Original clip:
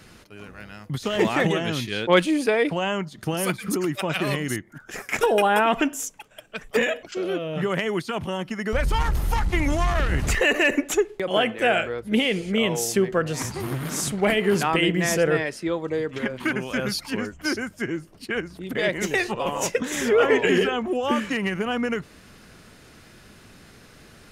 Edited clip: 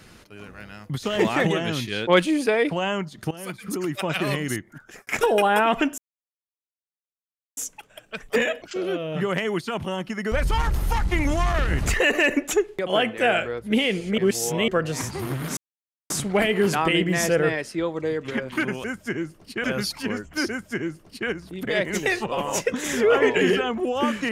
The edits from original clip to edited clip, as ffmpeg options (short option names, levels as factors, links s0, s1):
-filter_complex "[0:a]asplit=9[s0][s1][s2][s3][s4][s5][s6][s7][s8];[s0]atrim=end=3.31,asetpts=PTS-STARTPTS,afade=t=out:st=3.306:d=0.004:c=hsin:silence=0.158489[s9];[s1]atrim=start=3.31:end=5.07,asetpts=PTS-STARTPTS,afade=t=in:d=0.73:silence=0.158489,afade=t=out:st=1.42:d=0.34[s10];[s2]atrim=start=5.07:end=5.98,asetpts=PTS-STARTPTS,afade=t=in:d=0.004:c=hsin,afade=t=out:st=0.906:d=0.004:c=hsin,apad=pad_dur=1.59[s11];[s3]atrim=start=5.98:end=12.592,asetpts=PTS-STARTPTS,afade=t=in:d=0.004:c=hsin[s12];[s4]atrim=start=12.588:end=13.092,asetpts=PTS-STARTPTS,areverse[s13];[s5]atrim=start=13.088:end=13.98,asetpts=PTS-STARTPTS,afade=t=out:st=0.888:d=0.004:c=hsin,apad=pad_dur=0.53[s14];[s6]atrim=start=13.98:end=16.722,asetpts=PTS-STARTPTS,afade=t=in:d=0.004:c=hsin[s15];[s7]atrim=start=17.568:end=18.372[s16];[s8]atrim=start=16.718[s17];[s9][s10][s11][s12]concat=n=4:v=0:a=1[s18];[s18][s13]acrossfade=d=0.004:c1=hsin:c2=hsin[s19];[s14][s15]concat=n=2:v=0:a=1[s20];[s19][s20]acrossfade=d=0.004:c1=hsin:c2=hsin[s21];[s21][s16]acrossfade=d=0.004:c1=hsin:c2=hsin[s22];[s22][s17]acrossfade=d=0.004:c1=hsin:c2=hsin"